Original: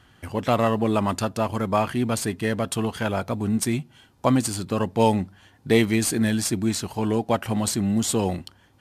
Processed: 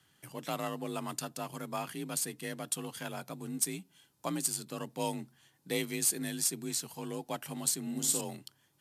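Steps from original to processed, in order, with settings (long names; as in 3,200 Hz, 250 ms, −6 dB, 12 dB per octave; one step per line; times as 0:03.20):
first-order pre-emphasis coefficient 0.8
0:07.81–0:08.21: flutter between parallel walls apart 9.6 metres, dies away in 0.57 s
frequency shifter +38 Hz
level −2.5 dB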